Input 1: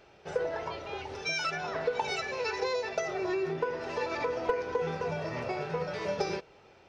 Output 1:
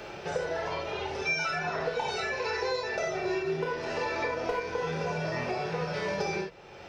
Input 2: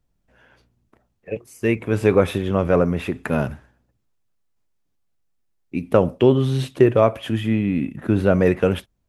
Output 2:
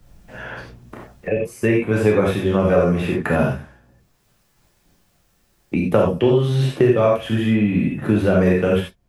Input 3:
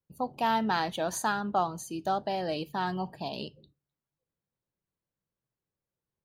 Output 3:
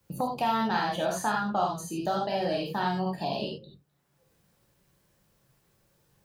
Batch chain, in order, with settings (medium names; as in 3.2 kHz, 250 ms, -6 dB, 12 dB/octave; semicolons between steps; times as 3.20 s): gated-style reverb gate 110 ms flat, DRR -3 dB; three bands compressed up and down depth 70%; trim -3 dB